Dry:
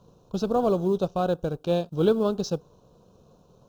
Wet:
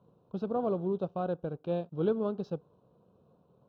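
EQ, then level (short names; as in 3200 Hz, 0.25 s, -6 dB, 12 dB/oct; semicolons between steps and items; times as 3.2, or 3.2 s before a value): HPF 99 Hz 12 dB/oct; air absorption 480 m; high shelf 5800 Hz +7.5 dB; -6.5 dB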